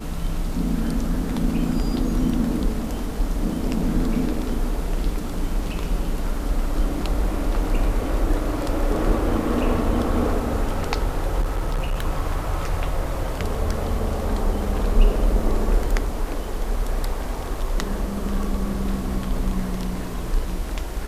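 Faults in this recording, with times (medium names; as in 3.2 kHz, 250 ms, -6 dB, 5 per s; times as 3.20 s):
11.41–12.04 s: clipped -19 dBFS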